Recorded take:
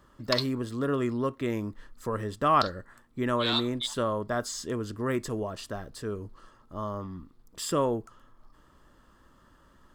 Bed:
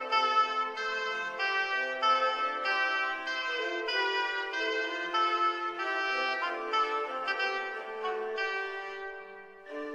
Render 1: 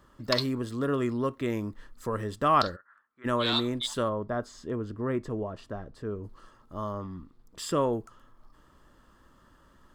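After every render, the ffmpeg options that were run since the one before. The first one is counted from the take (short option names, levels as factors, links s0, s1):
-filter_complex "[0:a]asplit=3[s0][s1][s2];[s0]afade=t=out:st=2.75:d=0.02[s3];[s1]bandpass=f=1400:t=q:w=4.3,afade=t=in:st=2.75:d=0.02,afade=t=out:st=3.24:d=0.02[s4];[s2]afade=t=in:st=3.24:d=0.02[s5];[s3][s4][s5]amix=inputs=3:normalize=0,asplit=3[s6][s7][s8];[s6]afade=t=out:st=4.08:d=0.02[s9];[s7]lowpass=f=1100:p=1,afade=t=in:st=4.08:d=0.02,afade=t=out:st=6.23:d=0.02[s10];[s8]afade=t=in:st=6.23:d=0.02[s11];[s9][s10][s11]amix=inputs=3:normalize=0,asettb=1/sr,asplit=3[s12][s13][s14];[s12]atrim=end=6.924[s15];[s13]atrim=start=6.92:end=7.93,asetpts=PTS-STARTPTS,afade=t=in:d=0.004:c=qsin,afade=t=out:st=1.006:d=0.004:c=qsin,highshelf=f=7100:g=-6.5[s16];[s14]atrim=start=7.926[s17];[s15][s16]acrossfade=d=0.004:c1=hsin:c2=qsin[s18];[s18][s17]acrossfade=d=0.004:c1=qsin:c2=hsin"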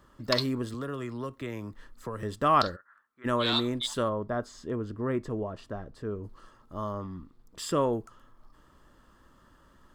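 -filter_complex "[0:a]asettb=1/sr,asplit=3[s0][s1][s2];[s0]atrim=end=0.744[s3];[s1]atrim=start=0.74:end=2.23,asetpts=PTS-STARTPTS,afade=t=in:d=0.004:c=qsin,afade=t=out:st=1.486:d=0.004:c=qsin,acrossover=split=140|520|3800[s4][s5][s6][s7];[s4]acompressor=threshold=0.00708:ratio=3[s8];[s5]acompressor=threshold=0.00891:ratio=3[s9];[s6]acompressor=threshold=0.01:ratio=3[s10];[s7]acompressor=threshold=0.00126:ratio=3[s11];[s8][s9][s10][s11]amix=inputs=4:normalize=0[s12];[s2]atrim=start=2.226[s13];[s3][s12]acrossfade=d=0.004:c1=hsin:c2=qsin[s14];[s14][s13]acrossfade=d=0.004:c1=qsin:c2=hsin"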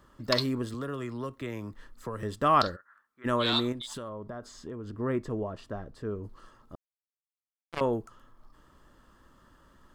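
-filter_complex "[0:a]asettb=1/sr,asplit=3[s0][s1][s2];[s0]atrim=end=3.724[s3];[s1]atrim=start=3.72:end=5,asetpts=PTS-STARTPTS,afade=t=in:d=0.004:c=qsin,afade=t=out:st=1.276:d=0.004:c=qsin,acompressor=threshold=0.0178:ratio=8:attack=3.2:release=140:knee=1:detection=peak[s4];[s2]atrim=start=4.996[s5];[s3][s4]acrossfade=d=0.004:c1=hsin:c2=qsin[s6];[s6][s5]acrossfade=d=0.004:c1=qsin:c2=hsin,asettb=1/sr,asplit=3[s7][s8][s9];[s7]atrim=end=6.754[s10];[s8]atrim=start=6.75:end=7.81,asetpts=PTS-STARTPTS,afade=t=in:d=0.004:c=qsin,afade=t=out:st=1.056:d=0.004:c=qsin,acrusher=bits=2:mix=0:aa=0.5[s11];[s9]atrim=start=7.806[s12];[s10][s11]acrossfade=d=0.004:c1=hsin:c2=qsin[s13];[s13][s12]acrossfade=d=0.004:c1=qsin:c2=hsin"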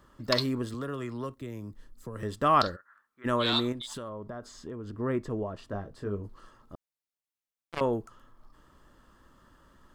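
-filter_complex "[0:a]asettb=1/sr,asplit=3[s0][s1][s2];[s0]atrim=end=1.344[s3];[s1]atrim=start=1.34:end=2.16,asetpts=PTS-STARTPTS,afade=t=in:d=0.004:c=qsin,afade=t=out:st=0.816:d=0.004:c=qsin,equalizer=f=1500:w=0.39:g=-11[s4];[s2]atrim=start=2.156[s5];[s3][s4]acrossfade=d=0.004:c1=hsin:c2=qsin[s6];[s6][s5]acrossfade=d=0.004:c1=qsin:c2=hsin,asettb=1/sr,asplit=3[s7][s8][s9];[s7]atrim=end=5.694[s10];[s8]atrim=start=5.69:end=6.22,asetpts=PTS-STARTPTS,afade=t=in:d=0.004:c=qsin,afade=t=out:st=0.526:d=0.004:c=qsin,asplit=2[s11][s12];[s12]adelay=20,volume=0.531[s13];[s11][s13]amix=inputs=2:normalize=0,atrim=end_sample=23373[s14];[s9]atrim=start=6.216[s15];[s10][s14]acrossfade=d=0.004:c1=hsin:c2=qsin[s16];[s16][s15]acrossfade=d=0.004:c1=qsin:c2=hsin"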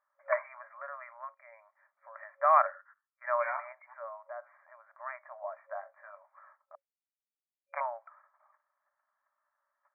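-af "agate=range=0.126:threshold=0.002:ratio=16:detection=peak,afftfilt=real='re*between(b*sr/4096,550,2400)':imag='im*between(b*sr/4096,550,2400)':win_size=4096:overlap=0.75"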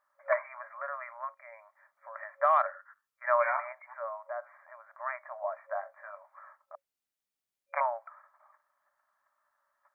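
-af "acontrast=23,alimiter=limit=0.178:level=0:latency=1:release=296"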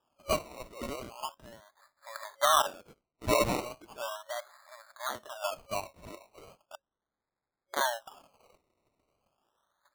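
-af "acrusher=samples=21:mix=1:aa=0.000001:lfo=1:lforange=12.6:lforate=0.37"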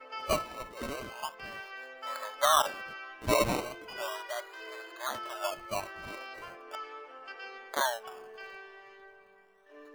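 -filter_complex "[1:a]volume=0.211[s0];[0:a][s0]amix=inputs=2:normalize=0"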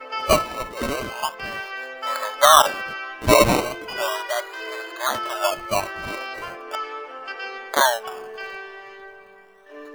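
-af "volume=3.98"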